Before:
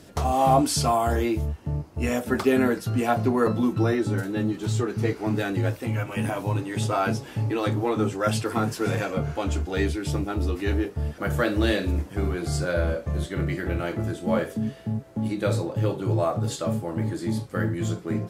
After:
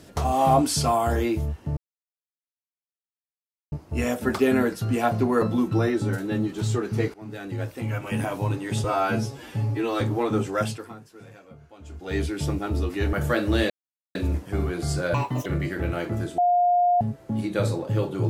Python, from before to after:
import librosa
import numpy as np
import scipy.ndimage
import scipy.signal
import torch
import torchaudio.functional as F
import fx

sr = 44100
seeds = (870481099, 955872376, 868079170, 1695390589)

y = fx.edit(x, sr, fx.insert_silence(at_s=1.77, length_s=1.95),
    fx.fade_in_from(start_s=5.19, length_s=0.94, floor_db=-20.0),
    fx.stretch_span(start_s=6.89, length_s=0.78, factor=1.5),
    fx.fade_down_up(start_s=8.23, length_s=1.66, db=-21.0, fade_s=0.48, curve='qua'),
    fx.cut(start_s=10.79, length_s=0.43),
    fx.insert_silence(at_s=11.79, length_s=0.45),
    fx.speed_span(start_s=12.78, length_s=0.55, speed=1.72),
    fx.bleep(start_s=14.25, length_s=0.63, hz=709.0, db=-16.5), tone=tone)